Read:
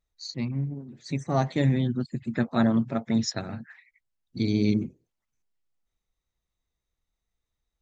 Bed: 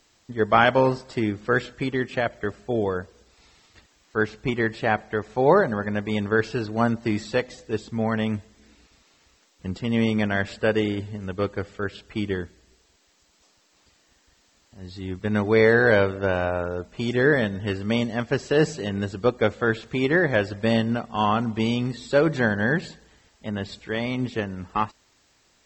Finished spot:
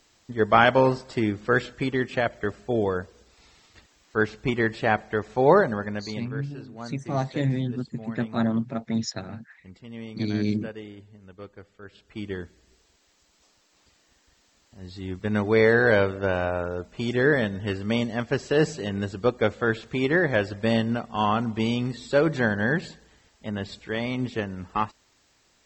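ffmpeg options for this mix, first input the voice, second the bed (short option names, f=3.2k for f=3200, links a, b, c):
-filter_complex "[0:a]adelay=5800,volume=-2dB[a];[1:a]volume=15dB,afade=t=out:st=5.58:d=0.74:silence=0.149624,afade=t=in:st=11.83:d=0.93:silence=0.177828[b];[a][b]amix=inputs=2:normalize=0"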